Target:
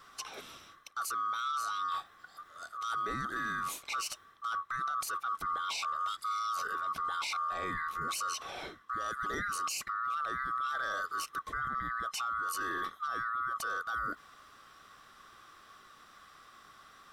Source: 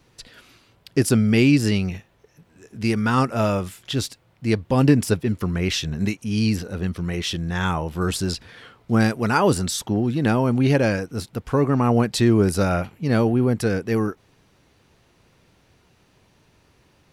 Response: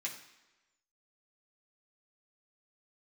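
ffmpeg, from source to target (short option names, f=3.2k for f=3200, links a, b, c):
-af "afftfilt=real='real(if(lt(b,960),b+48*(1-2*mod(floor(b/48),2)),b),0)':imag='imag(if(lt(b,960),b+48*(1-2*mod(floor(b/48),2)),b),0)':win_size=2048:overlap=0.75,areverse,acompressor=threshold=-28dB:ratio=5,areverse,alimiter=level_in=5.5dB:limit=-24dB:level=0:latency=1:release=15,volume=-5.5dB,volume=2dB"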